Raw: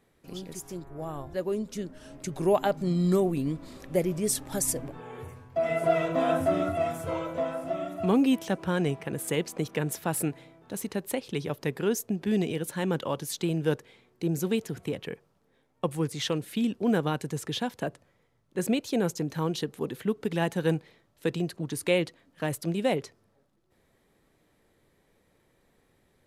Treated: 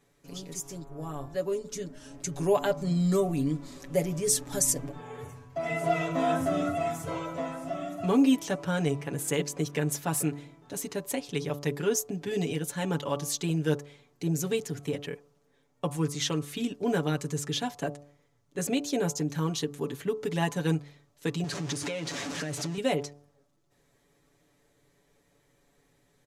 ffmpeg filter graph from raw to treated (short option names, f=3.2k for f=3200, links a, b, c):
-filter_complex "[0:a]asettb=1/sr,asplit=3[a][b][c];[a]atrim=end=21.444[d];[b]atrim=start=21.44:end=22.78,asetpts=PTS-STARTPTS,afade=t=in:d=0.004:c=qsin,afade=t=out:st=1.336:d=0.004:c=qsin,aeval=exprs='val(0)+0.5*0.0355*sgn(val(0))':c=same,acompressor=threshold=-30dB:ratio=5:attack=3.2:release=140:knee=1:detection=peak,highpass=100,lowpass=7.3k[e];[c]atrim=start=22.776[f];[d][e]acrossfade=d=0.004:c1=hsin:c2=qsin[g];[g][f]acrossfade=d=0.004:c1=qsin:c2=hsin,equalizer=f=6.5k:w=1.7:g=7.5,aecho=1:1:7:0.77,bandreject=f=72.17:t=h:w=4,bandreject=f=144.34:t=h:w=4,bandreject=f=216.51:t=h:w=4,bandreject=f=288.68:t=h:w=4,bandreject=f=360.85:t=h:w=4,bandreject=f=433.02:t=h:w=4,bandreject=f=505.19:t=h:w=4,bandreject=f=577.36:t=h:w=4,bandreject=f=649.53:t=h:w=4,bandreject=f=721.7:t=h:w=4,bandreject=f=793.87:t=h:w=4,bandreject=f=866.04:t=h:w=4,bandreject=f=938.21:t=h:w=4,bandreject=f=1.01038k:t=h:w=4,bandreject=f=1.08255k:t=h:w=4,bandreject=f=1.15472k:t=h:w=4,bandreject=f=1.22689k:t=h:w=4,bandreject=f=1.29906k:t=h:w=4,bandreject=f=1.37123k:t=h:w=4,volume=-2.5dB"